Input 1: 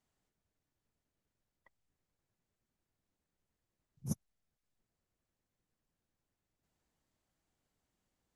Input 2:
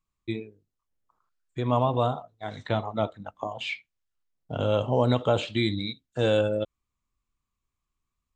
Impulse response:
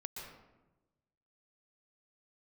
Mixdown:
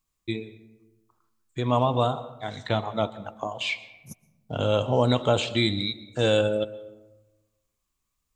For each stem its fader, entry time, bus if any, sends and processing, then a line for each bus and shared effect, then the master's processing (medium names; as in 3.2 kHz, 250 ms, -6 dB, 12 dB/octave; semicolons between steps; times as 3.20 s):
-9.0 dB, 0.00 s, send -14 dB, none
-0.5 dB, 0.00 s, send -10 dB, none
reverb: on, RT60 1.1 s, pre-delay 114 ms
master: treble shelf 4 kHz +10 dB